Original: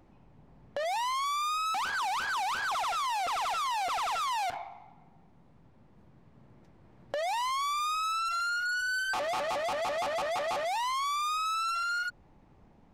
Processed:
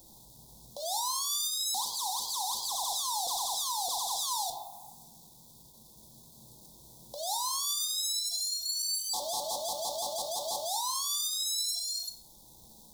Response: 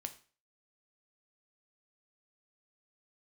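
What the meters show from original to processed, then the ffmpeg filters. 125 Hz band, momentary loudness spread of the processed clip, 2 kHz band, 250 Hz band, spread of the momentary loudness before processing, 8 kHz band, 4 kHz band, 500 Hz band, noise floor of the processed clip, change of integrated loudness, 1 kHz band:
−4.0 dB, 8 LU, below −40 dB, −5.5 dB, 3 LU, +12.0 dB, +5.5 dB, −5.5 dB, −56 dBFS, 0.0 dB, −7.0 dB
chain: -filter_complex "[0:a]bandreject=frequency=301.3:width_type=h:width=4,bandreject=frequency=602.6:width_type=h:width=4,bandreject=frequency=903.9:width_type=h:width=4,bandreject=frequency=1205.2:width_type=h:width=4,bandreject=frequency=1506.5:width_type=h:width=4,bandreject=frequency=1807.8:width_type=h:width=4,bandreject=frequency=2109.1:width_type=h:width=4,bandreject=frequency=2410.4:width_type=h:width=4,bandreject=frequency=2711.7:width_type=h:width=4,bandreject=frequency=3013:width_type=h:width=4,bandreject=frequency=3314.3:width_type=h:width=4,bandreject=frequency=3615.6:width_type=h:width=4,bandreject=frequency=3916.9:width_type=h:width=4,bandreject=frequency=4218.2:width_type=h:width=4,bandreject=frequency=4519.5:width_type=h:width=4,bandreject=frequency=4820.8:width_type=h:width=4,bandreject=frequency=5122.1:width_type=h:width=4,bandreject=frequency=5423.4:width_type=h:width=4,alimiter=level_in=9dB:limit=-24dB:level=0:latency=1:release=492,volume=-9dB,acrusher=bits=10:mix=0:aa=0.000001,asuperstop=centerf=1900:order=20:qfactor=0.8[link_01];[1:a]atrim=start_sample=2205,asetrate=41454,aresample=44100[link_02];[link_01][link_02]afir=irnorm=-1:irlink=0,crystalizer=i=9:c=0"

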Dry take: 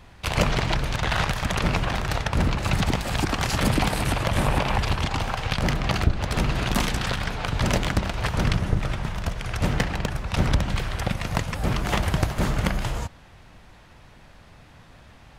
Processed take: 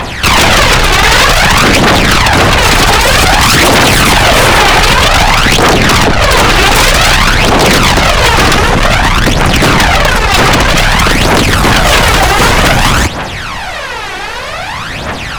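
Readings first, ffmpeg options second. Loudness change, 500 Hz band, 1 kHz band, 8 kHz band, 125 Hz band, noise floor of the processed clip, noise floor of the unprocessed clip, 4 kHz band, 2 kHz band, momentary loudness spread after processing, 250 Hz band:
+19.5 dB, +20.0 dB, +21.5 dB, +23.5 dB, +12.5 dB, −19 dBFS, −50 dBFS, +23.0 dB, +22.5 dB, 12 LU, +15.5 dB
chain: -filter_complex "[0:a]aphaser=in_gain=1:out_gain=1:delay=2.7:decay=0.65:speed=0.53:type=triangular,aeval=exprs='0.891*sin(PI/2*8.91*val(0)/0.891)':channel_layout=same,asplit=2[link_01][link_02];[link_02]highpass=frequency=720:poles=1,volume=19dB,asoftclip=type=tanh:threshold=-1dB[link_03];[link_01][link_03]amix=inputs=2:normalize=0,lowpass=frequency=6700:poles=1,volume=-6dB,volume=-1dB"

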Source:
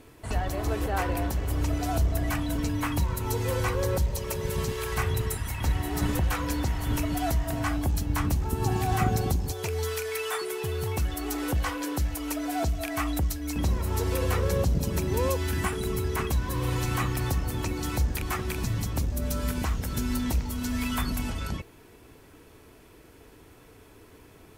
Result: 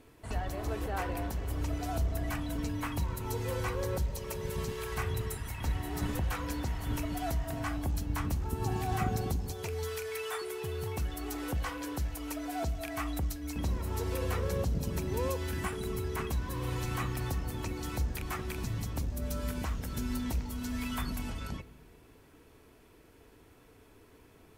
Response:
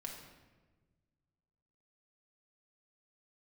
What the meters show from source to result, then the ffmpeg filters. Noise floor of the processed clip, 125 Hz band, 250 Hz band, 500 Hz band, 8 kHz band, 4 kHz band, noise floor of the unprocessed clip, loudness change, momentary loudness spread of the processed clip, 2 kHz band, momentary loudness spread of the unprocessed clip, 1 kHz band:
−59 dBFS, −6.5 dB, −6.5 dB, −6.0 dB, −7.5 dB, −7.0 dB, −53 dBFS, −6.5 dB, 4 LU, −6.5 dB, 4 LU, −6.0 dB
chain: -filter_complex "[0:a]asplit=2[link_01][link_02];[1:a]atrim=start_sample=2205,lowpass=5400[link_03];[link_02][link_03]afir=irnorm=-1:irlink=0,volume=-10.5dB[link_04];[link_01][link_04]amix=inputs=2:normalize=0,volume=-7.5dB"

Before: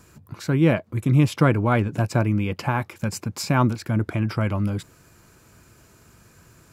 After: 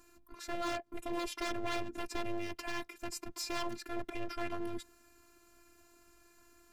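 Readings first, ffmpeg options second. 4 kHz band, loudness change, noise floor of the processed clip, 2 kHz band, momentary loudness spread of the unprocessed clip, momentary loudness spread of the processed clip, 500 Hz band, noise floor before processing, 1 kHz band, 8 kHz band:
−6.5 dB, −17.0 dB, −65 dBFS, −12.5 dB, 10 LU, 6 LU, −14.0 dB, −55 dBFS, −13.0 dB, −9.0 dB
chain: -af "aeval=exprs='0.0891*(abs(mod(val(0)/0.0891+3,4)-2)-1)':channel_layout=same,afftfilt=real='hypot(re,im)*cos(PI*b)':imag='0':win_size=512:overlap=0.75,volume=-6dB"

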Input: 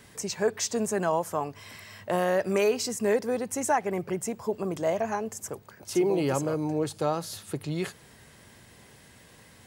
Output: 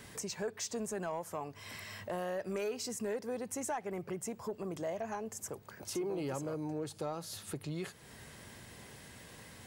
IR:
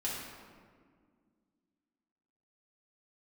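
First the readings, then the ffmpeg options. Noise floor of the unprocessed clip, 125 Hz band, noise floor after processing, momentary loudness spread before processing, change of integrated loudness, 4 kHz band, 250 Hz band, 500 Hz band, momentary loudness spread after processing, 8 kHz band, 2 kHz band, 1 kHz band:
−54 dBFS, −9.5 dB, −55 dBFS, 11 LU, −11.0 dB, −8.0 dB, −10.0 dB, −11.5 dB, 14 LU, −8.0 dB, −10.5 dB, −11.5 dB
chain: -af "acompressor=threshold=-44dB:ratio=2,asoftclip=type=tanh:threshold=-28.5dB,volume=1dB"

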